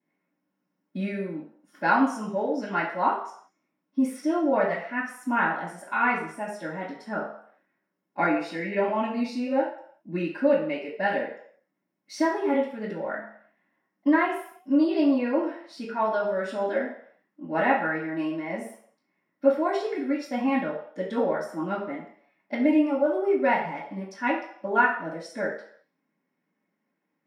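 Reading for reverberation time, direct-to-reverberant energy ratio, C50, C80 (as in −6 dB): 0.60 s, −16.0 dB, 5.0 dB, 9.0 dB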